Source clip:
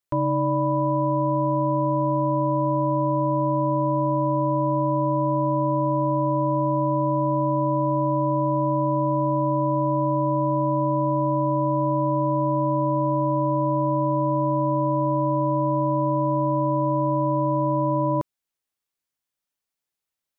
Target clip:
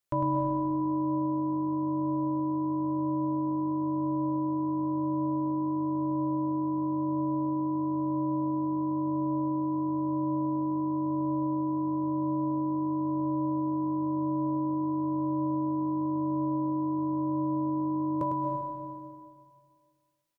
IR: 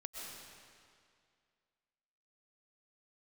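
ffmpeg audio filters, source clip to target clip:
-filter_complex "[0:a]asplit=2[a][b];[b]adelay=18,volume=-11.5dB[c];[a][c]amix=inputs=2:normalize=0,alimiter=limit=-20.5dB:level=0:latency=1:release=42,asplit=2[d][e];[1:a]atrim=start_sample=2205,adelay=103[f];[e][f]afir=irnorm=-1:irlink=0,volume=-0.5dB[g];[d][g]amix=inputs=2:normalize=0"

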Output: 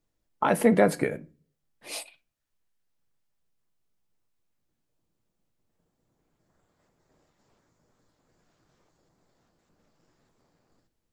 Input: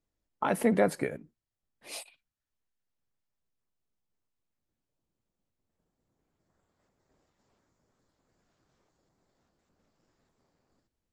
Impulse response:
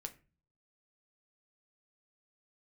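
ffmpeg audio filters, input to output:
-filter_complex "[0:a]asplit=2[a][b];[1:a]atrim=start_sample=2205,asetrate=48510,aresample=44100[c];[b][c]afir=irnorm=-1:irlink=0,volume=2.5dB[d];[a][d]amix=inputs=2:normalize=0"

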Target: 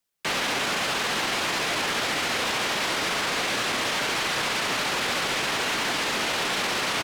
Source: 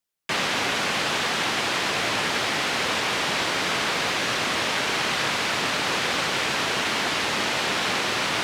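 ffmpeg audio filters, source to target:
-filter_complex "[0:a]acrossover=split=170|3000[a][b][c];[a]acompressor=threshold=-45dB:ratio=6[d];[d][b][c]amix=inputs=3:normalize=0,asoftclip=type=tanh:threshold=-26dB,atempo=1.2,volume=3.5dB"

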